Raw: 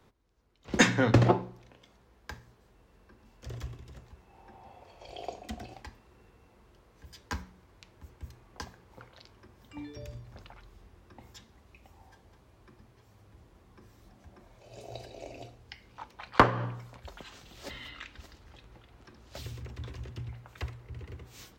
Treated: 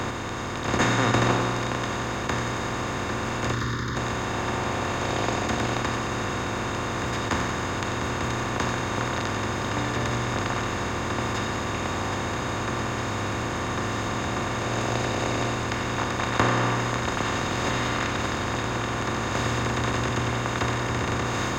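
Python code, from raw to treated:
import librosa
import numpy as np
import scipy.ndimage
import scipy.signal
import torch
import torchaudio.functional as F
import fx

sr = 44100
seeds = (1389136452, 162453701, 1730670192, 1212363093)

y = fx.bin_compress(x, sr, power=0.2)
y = fx.fixed_phaser(y, sr, hz=2600.0, stages=6, at=(3.52, 3.95), fade=0.02)
y = fx.echo_thinned(y, sr, ms=91, feedback_pct=75, hz=1200.0, wet_db=-7.5)
y = y * librosa.db_to_amplitude(-6.5)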